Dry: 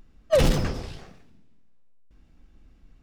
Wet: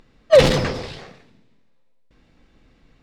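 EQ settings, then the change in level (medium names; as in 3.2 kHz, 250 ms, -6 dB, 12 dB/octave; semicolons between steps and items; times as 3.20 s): graphic EQ 125/250/500/1000/2000/4000/8000 Hz +8/+5/+12/+8/+11/+12/+6 dB; -5.0 dB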